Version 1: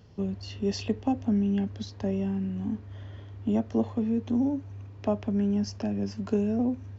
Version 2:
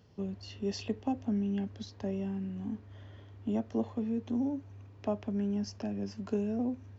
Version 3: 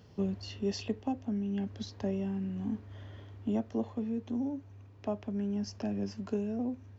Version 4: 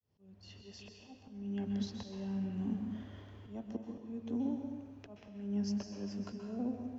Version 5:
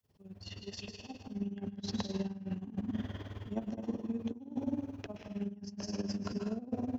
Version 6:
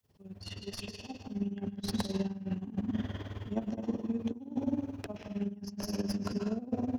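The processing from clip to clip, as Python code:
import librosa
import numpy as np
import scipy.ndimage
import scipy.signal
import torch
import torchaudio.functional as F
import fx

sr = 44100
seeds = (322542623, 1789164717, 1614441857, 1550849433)

y1 = fx.low_shelf(x, sr, hz=90.0, db=-7.5)
y1 = y1 * librosa.db_to_amplitude(-5.0)
y2 = fx.rider(y1, sr, range_db=10, speed_s=0.5)
y3 = fx.fade_in_head(y2, sr, length_s=1.18)
y3 = fx.auto_swell(y3, sr, attack_ms=337.0)
y3 = fx.rev_plate(y3, sr, seeds[0], rt60_s=1.2, hf_ratio=0.95, predelay_ms=115, drr_db=3.5)
y3 = y3 * librosa.db_to_amplitude(-2.5)
y4 = fx.over_compress(y3, sr, threshold_db=-41.0, ratio=-0.5)
y4 = y4 * (1.0 - 0.78 / 2.0 + 0.78 / 2.0 * np.cos(2.0 * np.pi * 19.0 * (np.arange(len(y4)) / sr)))
y4 = y4 * librosa.db_to_amplitude(8.0)
y5 = fx.tracing_dist(y4, sr, depth_ms=0.082)
y5 = y5 * librosa.db_to_amplitude(3.0)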